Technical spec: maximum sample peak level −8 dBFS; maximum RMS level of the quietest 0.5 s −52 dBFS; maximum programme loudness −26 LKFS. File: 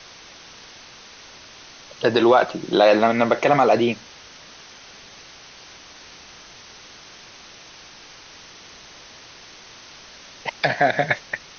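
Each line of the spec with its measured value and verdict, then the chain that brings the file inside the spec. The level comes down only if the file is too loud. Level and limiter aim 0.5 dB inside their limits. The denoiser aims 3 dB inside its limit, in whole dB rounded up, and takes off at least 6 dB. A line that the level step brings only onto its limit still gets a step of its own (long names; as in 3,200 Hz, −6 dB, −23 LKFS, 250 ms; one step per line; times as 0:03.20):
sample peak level −4.0 dBFS: out of spec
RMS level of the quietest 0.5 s −44 dBFS: out of spec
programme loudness −19.0 LKFS: out of spec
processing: broadband denoise 6 dB, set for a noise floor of −44 dBFS
level −7.5 dB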